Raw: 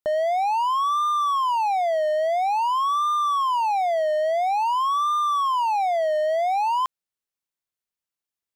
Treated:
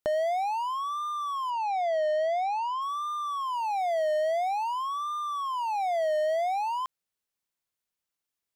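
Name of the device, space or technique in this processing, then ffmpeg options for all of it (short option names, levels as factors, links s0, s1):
de-esser from a sidechain: -filter_complex "[0:a]asplit=2[s0][s1];[s1]highpass=4700,apad=whole_len=377066[s2];[s0][s2]sidechaincompress=threshold=0.00316:ratio=8:attack=1.2:release=20,asettb=1/sr,asplit=3[s3][s4][s5];[s3]atrim=end=1.504[s6];[s4]atrim=start=1.5:end=2.82,asetpts=PTS-STARTPTS,afade=t=in:d=0.004:c=qsin,afade=t=out:st=1.316:d=0.004:c=qsin,lowpass=5700[s7];[s5]atrim=start=2.816[s8];[s6][s7]acrossfade=d=0.004:c1=hsin:c2=qsin[s9];[s9][s8]acrossfade=d=0.004:c1=qsin:c2=hsin,volume=1.26"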